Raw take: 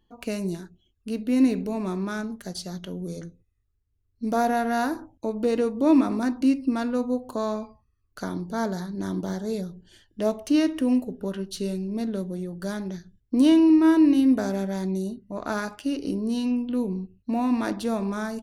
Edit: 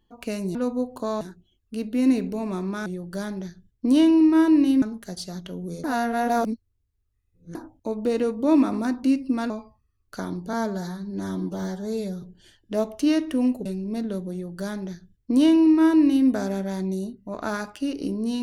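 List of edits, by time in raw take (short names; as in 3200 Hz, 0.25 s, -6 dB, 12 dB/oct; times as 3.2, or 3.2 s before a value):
3.22–4.93 reverse
6.88–7.54 move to 0.55
8.57–9.7 stretch 1.5×
11.13–11.69 cut
12.35–14.31 copy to 2.2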